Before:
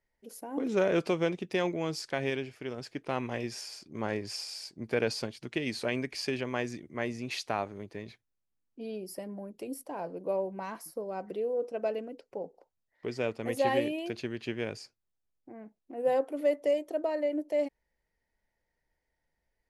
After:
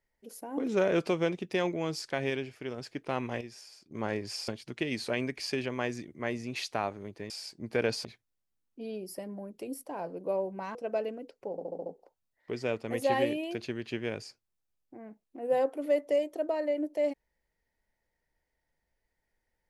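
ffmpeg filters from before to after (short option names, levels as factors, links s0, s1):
-filter_complex "[0:a]asplit=12[s0][s1][s2][s3][s4][s5][s6][s7][s8][s9][s10][s11];[s0]atrim=end=3.412[s12];[s1]atrim=start=3.408:end=3.912,asetpts=PTS-STARTPTS,volume=0.355[s13];[s2]atrim=start=3.908:end=4.482[s14];[s3]atrim=start=5.228:end=8.052[s15];[s4]atrim=start=4.478:end=5.232[s16];[s5]atrim=start=8.048:end=10.752[s17];[s6]atrim=start=11.648:end=12.482[s18];[s7]atrim=start=12.408:end=12.482[s19];[s8]atrim=start=12.408:end=12.482[s20];[s9]atrim=start=12.408:end=12.482[s21];[s10]atrim=start=12.408:end=12.482[s22];[s11]atrim=start=12.408[s23];[s12][s13]acrossfade=d=0.004:c1=hsin:c2=hsin[s24];[s24][s14]acrossfade=d=0.004:c1=hsin:c2=hsin[s25];[s25][s15]acrossfade=d=0.004:c1=hsin:c2=hsin[s26];[s26][s16]acrossfade=d=0.004:c1=hsin:c2=hsin[s27];[s27][s17]acrossfade=d=0.004:c1=hsin:c2=hsin[s28];[s28][s18]acrossfade=d=0.004:c1=hsin:c2=hsin[s29];[s29][s19]acrossfade=d=0.004:c1=hsin:c2=hsin[s30];[s30][s20]acrossfade=d=0.004:c1=hsin:c2=hsin[s31];[s31][s21]acrossfade=d=0.004:c1=hsin:c2=hsin[s32];[s32][s22]acrossfade=d=0.004:c1=hsin:c2=hsin[s33];[s33][s23]acrossfade=d=0.004:c1=hsin:c2=hsin"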